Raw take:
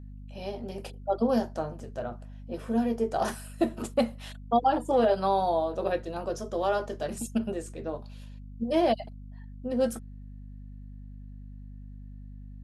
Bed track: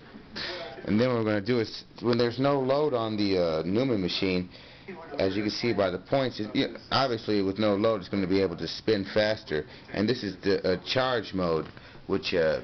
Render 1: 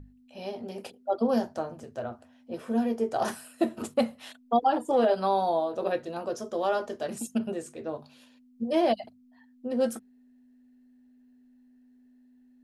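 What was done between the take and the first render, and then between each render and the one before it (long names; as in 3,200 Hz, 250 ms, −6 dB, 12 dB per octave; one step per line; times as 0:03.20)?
mains-hum notches 50/100/150/200 Hz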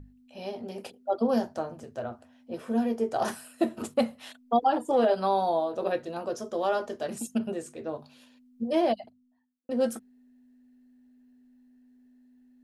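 0:08.67–0:09.69: fade out and dull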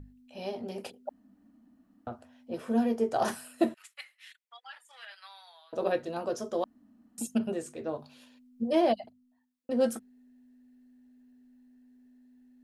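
0:01.09–0:02.07: fill with room tone
0:03.74–0:05.73: four-pole ladder high-pass 1,700 Hz, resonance 55%
0:06.64–0:07.18: fill with room tone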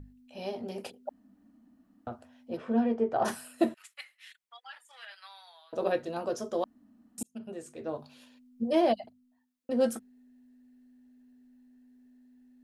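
0:02.56–0:03.24: low-pass filter 3,700 Hz → 2,000 Hz
0:07.23–0:07.99: fade in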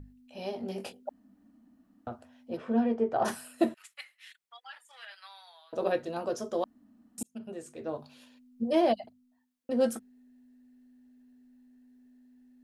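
0:00.58–0:01.03: double-tracking delay 21 ms −6.5 dB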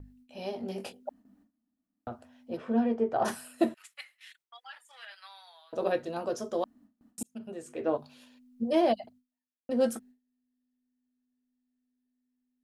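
0:07.69–0:07.97: gain on a spectral selection 240–3,400 Hz +7 dB
noise gate with hold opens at −52 dBFS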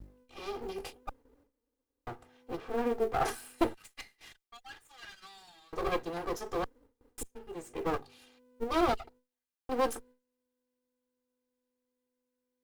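lower of the sound and its delayed copy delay 2.5 ms
floating-point word with a short mantissa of 4 bits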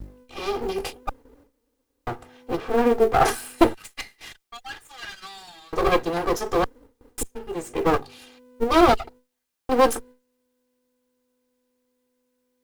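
level +12 dB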